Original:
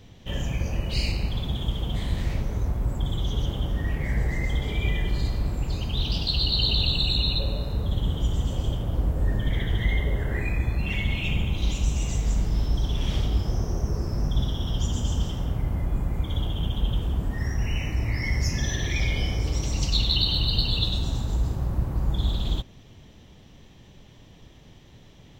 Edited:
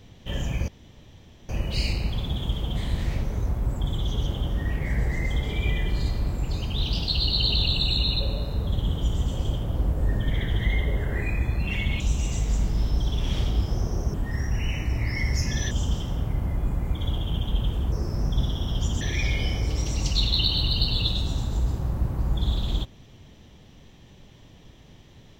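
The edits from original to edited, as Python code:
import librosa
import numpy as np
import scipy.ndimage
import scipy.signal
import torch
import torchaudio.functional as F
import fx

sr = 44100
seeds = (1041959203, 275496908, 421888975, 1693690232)

y = fx.edit(x, sr, fx.insert_room_tone(at_s=0.68, length_s=0.81),
    fx.cut(start_s=11.19, length_s=0.58),
    fx.swap(start_s=13.91, length_s=1.09, other_s=17.21, other_length_s=1.57), tone=tone)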